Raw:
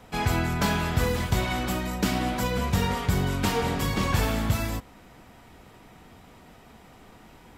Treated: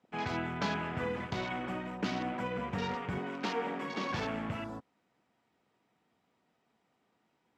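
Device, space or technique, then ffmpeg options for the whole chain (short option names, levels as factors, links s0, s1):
over-cleaned archive recording: -filter_complex "[0:a]asettb=1/sr,asplit=3[s0][s1][s2];[s0]atrim=end=3.184[s3];[s1]atrim=start=3.18:end=4.12,asetpts=PTS-STARTPTS,afade=t=in:d=0.004:c=qsin,afade=t=out:st=0.936:d=0.004:c=qsin,highpass=f=200:w=0.5412,highpass=f=200:w=1.3066[s4];[s2]atrim=start=4.116[s5];[s3][s4]acrossfade=d=0.004:c1=hsin:c2=qsin[s6];[s6][s5]acrossfade=d=0.004:c1=qsin:c2=hsin,highpass=170,lowpass=7200,afwtdn=0.0141,volume=0.447"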